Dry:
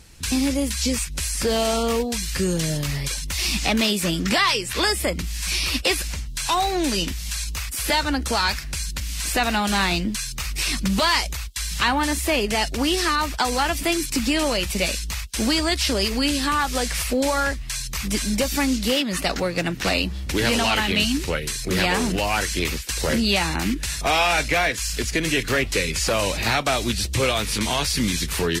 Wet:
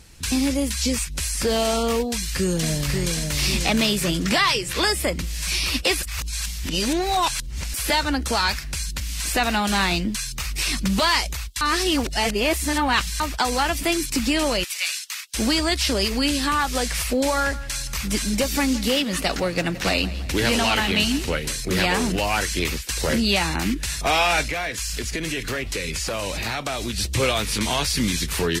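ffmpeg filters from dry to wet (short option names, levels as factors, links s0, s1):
-filter_complex "[0:a]asplit=2[s0][s1];[s1]afade=t=in:st=2.08:d=0.01,afade=t=out:st=3.09:d=0.01,aecho=0:1:540|1080|1620|2160|2700|3240|3780:0.595662|0.327614|0.180188|0.0991033|0.0545068|0.0299787|0.0164883[s2];[s0][s2]amix=inputs=2:normalize=0,asplit=3[s3][s4][s5];[s3]afade=t=out:st=14.63:d=0.02[s6];[s4]highpass=f=1200:w=0.5412,highpass=f=1200:w=1.3066,afade=t=in:st=14.63:d=0.02,afade=t=out:st=15.33:d=0.02[s7];[s5]afade=t=in:st=15.33:d=0.02[s8];[s6][s7][s8]amix=inputs=3:normalize=0,asettb=1/sr,asplit=3[s9][s10][s11];[s9]atrim=end=17.364[s12];[s10]atrim=start=17.36:end=21.61,asetpts=PTS-STARTPTS,afade=t=in:d=0.004:c=qsin,afade=t=out:st=4.246:d=0.004:c=qsin,aecho=1:1:168|336|504|672|840:0.141|0.0763|0.0412|0.0222|0.012,atrim=end_sample=187425[s13];[s11]atrim=start=21.606[s14];[s12][s13]acrossfade=d=0.004:c1=hsin:c2=qsin[s15];[s15][s14]acrossfade=d=0.004:c1=qsin:c2=hsin,asettb=1/sr,asplit=3[s16][s17][s18];[s16]atrim=end=24.484[s19];[s17]atrim=start=24.48:end=26.98,asetpts=PTS-STARTPTS,afade=t=in:d=0.004:c=qsin,afade=t=out:st=2.496:d=0.004:c=qsin,acompressor=threshold=0.0708:ratio=6:attack=3.2:release=140:knee=1:detection=peak[s20];[s18]atrim=start=26.976[s21];[s19][s20]acrossfade=d=0.004:c1=hsin:c2=qsin[s22];[s22][s21]acrossfade=d=0.004:c1=qsin:c2=hsin,asplit=5[s23][s24][s25][s26][s27];[s23]atrim=end=6.032[s28];[s24]atrim=start=6.028:end=7.742,asetpts=PTS-STARTPTS,areverse[s29];[s25]atrim=start=7.738:end=11.612[s30];[s26]atrim=start=11.608:end=13.202,asetpts=PTS-STARTPTS,areverse[s31];[s27]atrim=start=13.198[s32];[s28][s29]acrossfade=d=0.004:c1=hsin:c2=hsin[s33];[s33][s30]acrossfade=d=0.004:c1=hsin:c2=hsin[s34];[s34][s31]acrossfade=d=0.004:c1=hsin:c2=hsin[s35];[s35][s32]acrossfade=d=0.004:c1=hsin:c2=hsin"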